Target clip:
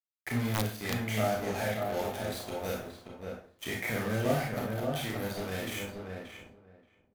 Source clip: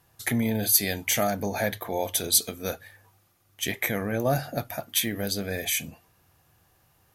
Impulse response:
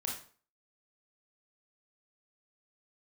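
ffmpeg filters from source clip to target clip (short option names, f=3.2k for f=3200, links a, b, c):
-filter_complex "[0:a]asettb=1/sr,asplit=3[a][b][c];[a]atrim=end=2.524[d];[b]atrim=start=2.52:end=4.45,asetpts=PTS-STARTPTS,afade=t=in:d=0.004:c=qsin,afade=t=out:st=1.926:d=0.004:c=qsin,aeval=exprs='val(0)+0.5*0.0168*sgn(val(0))':c=same[e];[c]atrim=start=4.446[f];[d][e]acrossfade=d=0.004:c1=hsin:c2=qsin[g];[g][f]acrossfade=d=0.004:c1=qsin:c2=hsin,acrossover=split=3200[h][i];[i]acompressor=threshold=-40dB:ratio=4:attack=1:release=60[j];[h][j]amix=inputs=2:normalize=0,acrusher=bits=4:mix=0:aa=0.5,agate=range=-33dB:threshold=-58dB:ratio=3:detection=peak,asplit=2[k][l];[l]adelay=579,lowpass=f=1.6k:p=1,volume=-4dB,asplit=2[m][n];[n]adelay=579,lowpass=f=1.6k:p=1,volume=0.16,asplit=2[o][p];[p]adelay=579,lowpass=f=1.6k:p=1,volume=0.16[q];[k][m][o][q]amix=inputs=4:normalize=0[r];[1:a]atrim=start_sample=2205[s];[r][s]afir=irnorm=-1:irlink=0,asettb=1/sr,asplit=3[t][u][v];[t]atrim=end=0.534[w];[u]atrim=start=0.53:end=1.06,asetpts=PTS-STARTPTS,afade=t=in:d=0.004:c=qsin,afade=t=out:st=0.526:d=0.004:c=qsin,aeval=exprs='(mod(5.96*val(0)+1,2)-1)/5.96':c=same[x];[v]atrim=start=1.056[y];[w][x]acrossfade=d=0.004:c1=hsin:c2=qsin[z];[z][y]acrossfade=d=0.004:c1=qsin:c2=hsin,volume=-6.5dB"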